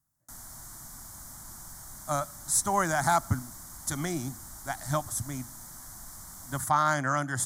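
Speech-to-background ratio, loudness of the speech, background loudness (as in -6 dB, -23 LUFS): 14.5 dB, -29.0 LUFS, -43.5 LUFS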